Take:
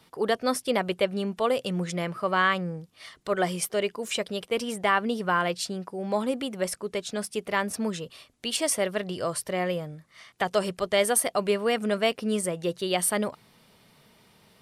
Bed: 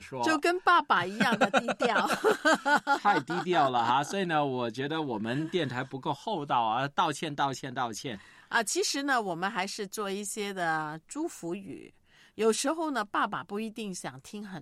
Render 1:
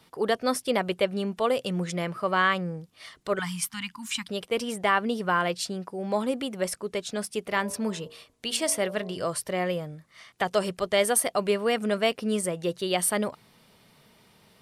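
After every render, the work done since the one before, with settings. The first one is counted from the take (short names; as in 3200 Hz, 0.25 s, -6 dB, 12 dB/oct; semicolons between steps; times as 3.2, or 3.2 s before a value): 3.39–4.29 elliptic band-stop 270–900 Hz; 7.48–9.25 de-hum 58.63 Hz, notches 19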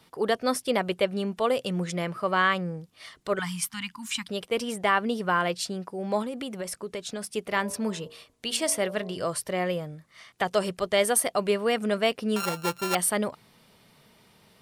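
6.22–7.35 compressor, threshold -29 dBFS; 12.36–12.95 sample sorter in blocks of 32 samples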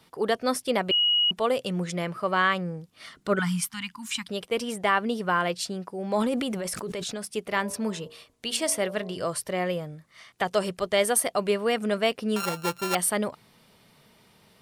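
0.91–1.31 bleep 2900 Hz -19 dBFS; 2.96–3.62 small resonant body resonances 210/1400 Hz, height 9 dB, ringing for 20 ms; 6.07–7.15 sustainer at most 20 dB/s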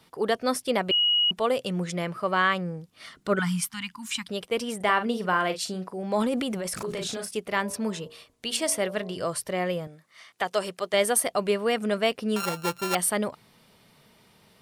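4.76–6.03 doubler 43 ms -10 dB; 6.76–7.37 doubler 36 ms -3.5 dB; 9.87–10.94 HPF 410 Hz 6 dB/oct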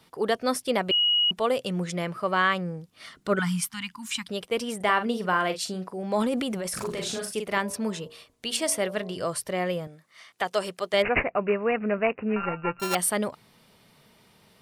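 6.69–7.58 doubler 45 ms -5 dB; 11.02–12.8 careless resampling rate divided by 8×, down none, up filtered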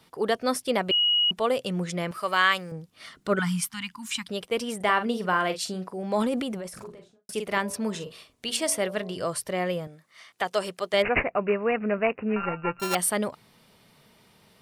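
2.11–2.72 tilt +3.5 dB/oct; 6.21–7.29 studio fade out; 7.9–8.5 doubler 46 ms -10 dB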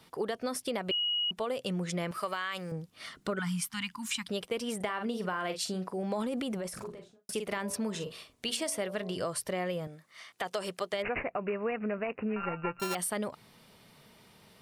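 limiter -17 dBFS, peak gain reduction 9 dB; compressor, threshold -30 dBFS, peak gain reduction 8.5 dB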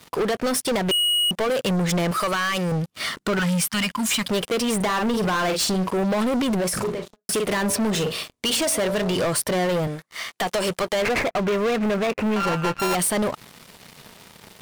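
sample leveller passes 5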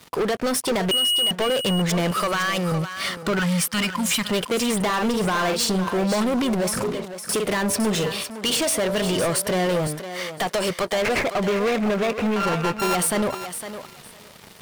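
thinning echo 0.508 s, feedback 17%, high-pass 320 Hz, level -9.5 dB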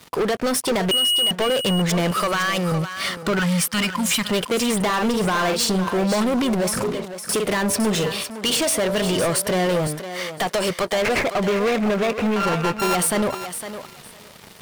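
gain +1.5 dB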